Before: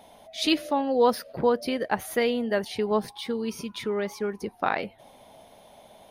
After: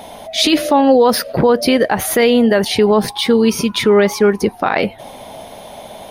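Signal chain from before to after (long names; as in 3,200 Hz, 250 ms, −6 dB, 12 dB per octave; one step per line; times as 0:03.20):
boost into a limiter +20.5 dB
level −2.5 dB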